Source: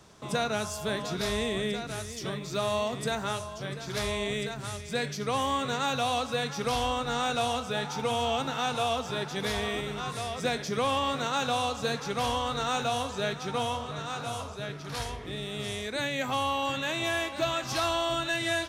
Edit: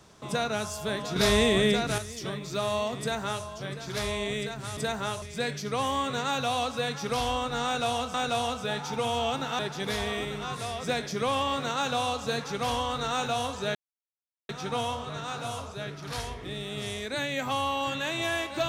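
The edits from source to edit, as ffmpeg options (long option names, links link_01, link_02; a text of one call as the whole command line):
ffmpeg -i in.wav -filter_complex "[0:a]asplit=8[link_01][link_02][link_03][link_04][link_05][link_06][link_07][link_08];[link_01]atrim=end=1.162[link_09];[link_02]atrim=start=1.158:end=1.982,asetpts=PTS-STARTPTS,volume=7.5dB[link_10];[link_03]atrim=start=1.978:end=4.772[link_11];[link_04]atrim=start=2.998:end=3.452[link_12];[link_05]atrim=start=4.768:end=7.692[link_13];[link_06]atrim=start=7.198:end=8.652[link_14];[link_07]atrim=start=9.148:end=13.31,asetpts=PTS-STARTPTS,afade=type=out:start_time=4.158:duration=0.004:curve=hsin,apad=pad_dur=0.74[link_15];[link_08]atrim=start=13.31,asetpts=PTS-STARTPTS,afade=type=in:duration=0.004:curve=hsin[link_16];[link_09][link_10]acrossfade=duration=0.004:curve1=hsin:curve2=hsin[link_17];[link_17][link_11]acrossfade=duration=0.004:curve1=hsin:curve2=hsin[link_18];[link_18][link_12]acrossfade=duration=0.004:curve1=hsin:curve2=hsin[link_19];[link_19][link_13]acrossfade=duration=0.004:curve1=hsin:curve2=hsin[link_20];[link_20][link_14]acrossfade=duration=0.004:curve1=hsin:curve2=hsin[link_21];[link_15][link_16]concat=n=2:v=0:a=1[link_22];[link_21][link_22]acrossfade=duration=0.004:curve1=hsin:curve2=hsin" out.wav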